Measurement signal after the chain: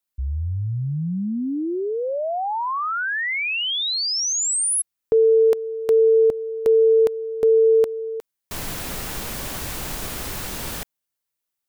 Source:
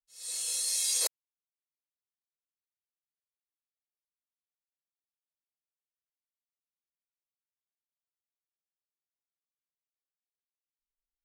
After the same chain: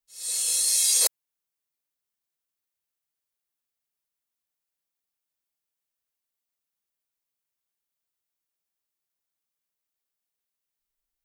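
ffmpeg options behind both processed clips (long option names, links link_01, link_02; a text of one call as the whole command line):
ffmpeg -i in.wav -af "highshelf=frequency=9800:gain=7,volume=5.5dB" out.wav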